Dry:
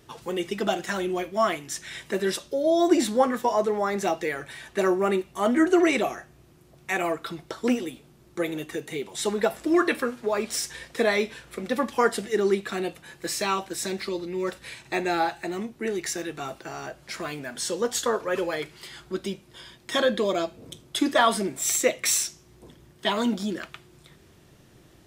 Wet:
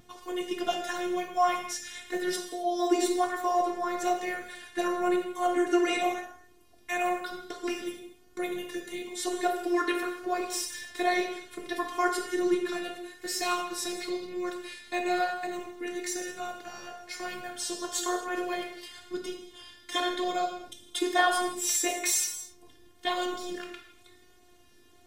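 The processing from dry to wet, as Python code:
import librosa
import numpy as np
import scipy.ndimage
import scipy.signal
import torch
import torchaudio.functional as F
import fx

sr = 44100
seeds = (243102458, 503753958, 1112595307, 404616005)

y = fx.robotise(x, sr, hz=355.0)
y = fx.vibrato(y, sr, rate_hz=1.0, depth_cents=21.0)
y = fx.rev_gated(y, sr, seeds[0], gate_ms=290, shape='falling', drr_db=2.5)
y = F.gain(torch.from_numpy(y), -2.5).numpy()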